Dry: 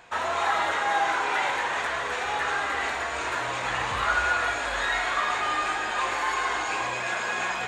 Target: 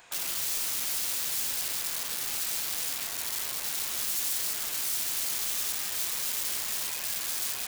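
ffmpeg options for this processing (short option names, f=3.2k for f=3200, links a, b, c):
-af "aeval=exprs='(mod(17.8*val(0)+1,2)-1)/17.8':c=same,alimiter=level_in=7.5dB:limit=-24dB:level=0:latency=1,volume=-7.5dB,crystalizer=i=4:c=0,volume=-7dB"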